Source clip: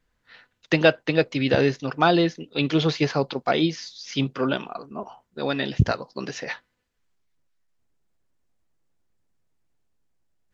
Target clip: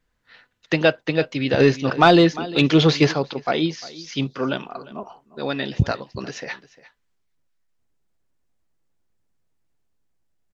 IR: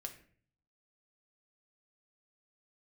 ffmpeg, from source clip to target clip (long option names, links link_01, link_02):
-filter_complex "[0:a]aecho=1:1:351:0.112,asplit=3[link_01][link_02][link_03];[link_01]afade=type=out:start_time=1.59:duration=0.02[link_04];[link_02]acontrast=74,afade=type=in:start_time=1.59:duration=0.02,afade=type=out:start_time=3.12:duration=0.02[link_05];[link_03]afade=type=in:start_time=3.12:duration=0.02[link_06];[link_04][link_05][link_06]amix=inputs=3:normalize=0"